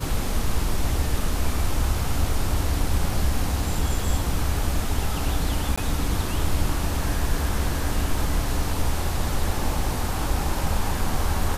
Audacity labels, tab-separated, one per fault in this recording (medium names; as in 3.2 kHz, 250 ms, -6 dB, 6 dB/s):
5.760000	5.780000	dropout 15 ms